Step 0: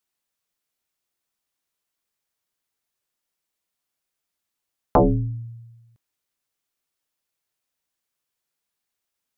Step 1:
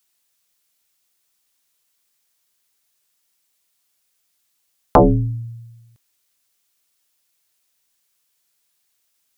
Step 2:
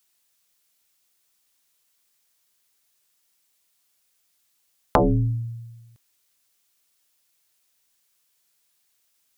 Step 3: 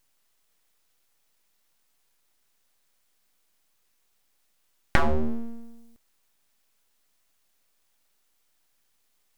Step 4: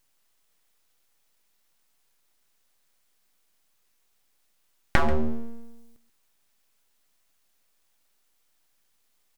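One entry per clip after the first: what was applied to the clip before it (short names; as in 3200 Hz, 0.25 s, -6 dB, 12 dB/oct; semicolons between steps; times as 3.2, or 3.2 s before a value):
high shelf 2200 Hz +10 dB; gain +4.5 dB
compressor 6:1, threshold -16 dBFS, peak gain reduction 8.5 dB
full-wave rectifier
echo 0.136 s -16 dB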